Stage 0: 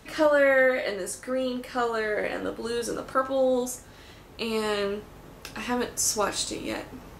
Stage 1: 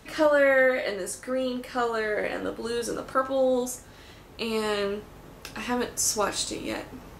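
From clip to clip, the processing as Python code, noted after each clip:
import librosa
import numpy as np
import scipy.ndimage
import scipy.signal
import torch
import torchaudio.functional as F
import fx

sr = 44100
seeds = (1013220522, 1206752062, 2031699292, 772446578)

y = x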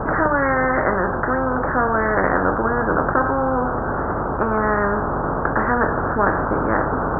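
y = fx.vibrato(x, sr, rate_hz=1.5, depth_cents=32.0)
y = scipy.signal.sosfilt(scipy.signal.butter(12, 1500.0, 'lowpass', fs=sr, output='sos'), y)
y = fx.spectral_comp(y, sr, ratio=4.0)
y = y * 10.0 ** (7.0 / 20.0)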